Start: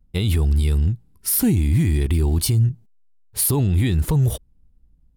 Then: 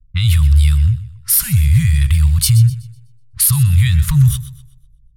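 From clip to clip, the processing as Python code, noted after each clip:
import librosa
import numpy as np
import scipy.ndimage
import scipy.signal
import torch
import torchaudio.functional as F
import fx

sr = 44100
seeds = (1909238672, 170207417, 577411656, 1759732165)

y = scipy.signal.sosfilt(scipy.signal.ellip(3, 1.0, 40, [140.0, 1200.0], 'bandstop', fs=sr, output='sos'), x)
y = fx.env_lowpass(y, sr, base_hz=350.0, full_db=-19.5)
y = fx.echo_warbled(y, sr, ms=125, feedback_pct=34, rate_hz=2.8, cents=54, wet_db=-14.5)
y = y * 10.0 ** (8.0 / 20.0)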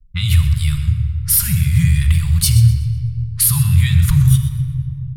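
y = fx.room_shoebox(x, sr, seeds[0], volume_m3=3700.0, walls='mixed', distance_m=1.3)
y = y * 10.0 ** (-1.5 / 20.0)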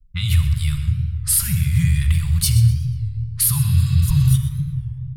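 y = fx.spec_repair(x, sr, seeds[1], start_s=3.63, length_s=0.68, low_hz=1100.0, high_hz=5100.0, source='before')
y = fx.record_warp(y, sr, rpm=33.33, depth_cents=160.0)
y = y * 10.0 ** (-3.5 / 20.0)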